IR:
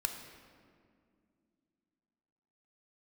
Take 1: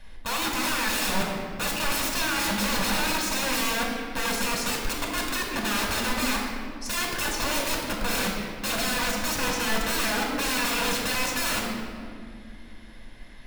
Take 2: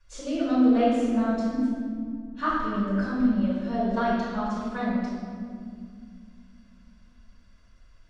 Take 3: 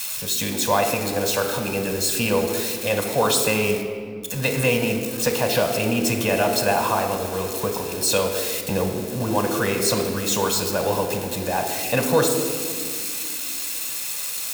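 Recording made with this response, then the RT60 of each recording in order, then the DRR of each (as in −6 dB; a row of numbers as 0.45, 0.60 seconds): 3; 2.2, 2.2, 2.3 seconds; −1.5, −10.5, 4.5 decibels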